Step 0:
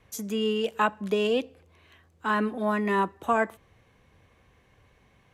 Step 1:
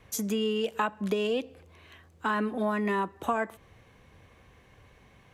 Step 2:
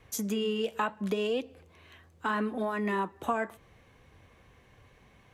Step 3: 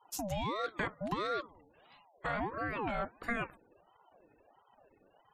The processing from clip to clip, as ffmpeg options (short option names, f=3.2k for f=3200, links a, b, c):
-af "acompressor=threshold=-30dB:ratio=4,volume=4dB"
-af "flanger=delay=2.4:depth=6.2:regen=-73:speed=0.74:shape=sinusoidal,volume=2.5dB"
-af "afftfilt=real='re*gte(hypot(re,im),0.00251)':imag='im*gte(hypot(re,im),0.00251)':win_size=1024:overlap=0.75,aeval=exprs='val(0)*sin(2*PI*650*n/s+650*0.45/1.5*sin(2*PI*1.5*n/s))':c=same,volume=-2.5dB"